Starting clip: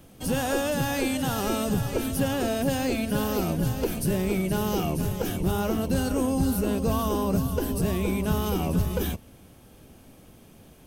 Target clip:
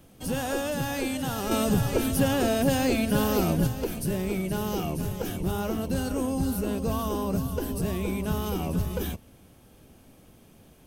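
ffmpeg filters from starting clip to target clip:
ffmpeg -i in.wav -filter_complex "[0:a]asettb=1/sr,asplit=3[link_01][link_02][link_03];[link_01]atrim=end=1.514[link_04];[link_02]atrim=start=1.51:end=3.67,asetpts=PTS-STARTPTS,afade=type=in:duration=0.004:curve=qsin,afade=type=out:start_time=2.156:duration=0.004:curve=qsin,acontrast=31[link_05];[link_03]atrim=start=3.666[link_06];[link_04][link_05]acrossfade=duration=0.004:curve1=hsin:curve2=qsin[link_07];[link_07][link_06]acrossfade=duration=0.004:curve1=qsin:curve2=hsin,volume=-3dB" out.wav

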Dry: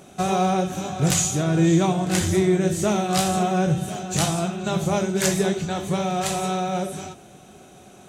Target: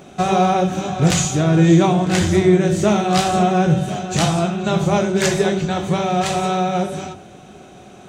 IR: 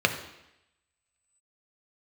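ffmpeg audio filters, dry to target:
-af "equalizer=frequency=12000:width=0.68:gain=-14.5,bandreject=frequency=47.21:width_type=h:width=4,bandreject=frequency=94.42:width_type=h:width=4,bandreject=frequency=141.63:width_type=h:width=4,bandreject=frequency=188.84:width_type=h:width=4,bandreject=frequency=236.05:width_type=h:width=4,bandreject=frequency=283.26:width_type=h:width=4,bandreject=frequency=330.47:width_type=h:width=4,bandreject=frequency=377.68:width_type=h:width=4,bandreject=frequency=424.89:width_type=h:width=4,bandreject=frequency=472.1:width_type=h:width=4,bandreject=frequency=519.31:width_type=h:width=4,bandreject=frequency=566.52:width_type=h:width=4,bandreject=frequency=613.73:width_type=h:width=4,bandreject=frequency=660.94:width_type=h:width=4,bandreject=frequency=708.15:width_type=h:width=4,bandreject=frequency=755.36:width_type=h:width=4,bandreject=frequency=802.57:width_type=h:width=4,bandreject=frequency=849.78:width_type=h:width=4,bandreject=frequency=896.99:width_type=h:width=4,bandreject=frequency=944.2:width_type=h:width=4,bandreject=frequency=991.41:width_type=h:width=4,bandreject=frequency=1038.62:width_type=h:width=4,bandreject=frequency=1085.83:width_type=h:width=4,bandreject=frequency=1133.04:width_type=h:width=4,bandreject=frequency=1180.25:width_type=h:width=4,bandreject=frequency=1227.46:width_type=h:width=4,bandreject=frequency=1274.67:width_type=h:width=4,bandreject=frequency=1321.88:width_type=h:width=4,bandreject=frequency=1369.09:width_type=h:width=4,bandreject=frequency=1416.3:width_type=h:width=4,bandreject=frequency=1463.51:width_type=h:width=4,bandreject=frequency=1510.72:width_type=h:width=4,bandreject=frequency=1557.93:width_type=h:width=4,bandreject=frequency=1605.14:width_type=h:width=4,volume=6.5dB"

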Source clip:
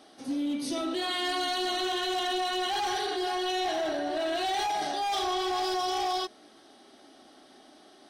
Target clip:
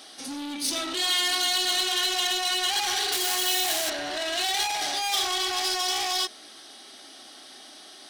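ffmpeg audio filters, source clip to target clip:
ffmpeg -i in.wav -filter_complex "[0:a]asoftclip=type=tanh:threshold=-32.5dB,asettb=1/sr,asplit=3[link_01][link_02][link_03];[link_01]atrim=end=3.124[link_04];[link_02]atrim=start=3.12:end=3.9,asetpts=PTS-STARTPTS,afade=type=in:duration=0.004:curve=qsin,afade=type=out:start_time=0.776:duration=0.004:curve=qsin,aeval=exprs='0.0237*(cos(1*acos(clip(val(0)/0.0237,-1,1)))-cos(1*PI/2))+0.0119*(cos(5*acos(clip(val(0)/0.0237,-1,1)))-cos(5*PI/2))':channel_layout=same[link_05];[link_03]atrim=start=3.896[link_06];[link_04][link_05]acrossfade=duration=0.004:curve1=hsin:curve2=qsin[link_07];[link_07][link_06]acrossfade=duration=0.004:curve1=qsin:curve2=hsin,tiltshelf=frequency=1400:gain=-8.5,volume=7.5dB" out.wav

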